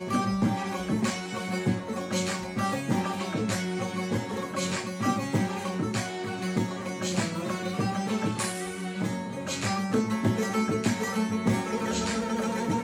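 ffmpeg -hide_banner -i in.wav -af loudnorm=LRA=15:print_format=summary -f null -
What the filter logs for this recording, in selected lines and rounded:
Input Integrated:    -28.9 LUFS
Input True Peak:     -12.4 dBTP
Input LRA:             2.3 LU
Input Threshold:     -38.9 LUFS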